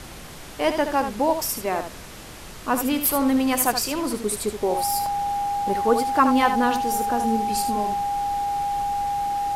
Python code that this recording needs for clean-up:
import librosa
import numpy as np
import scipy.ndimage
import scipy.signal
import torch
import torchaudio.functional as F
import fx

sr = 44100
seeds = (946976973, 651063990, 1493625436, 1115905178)

y = fx.notch(x, sr, hz=810.0, q=30.0)
y = fx.fix_interpolate(y, sr, at_s=(5.06,), length_ms=2.4)
y = fx.noise_reduce(y, sr, print_start_s=2.06, print_end_s=2.56, reduce_db=29.0)
y = fx.fix_echo_inverse(y, sr, delay_ms=75, level_db=-8.5)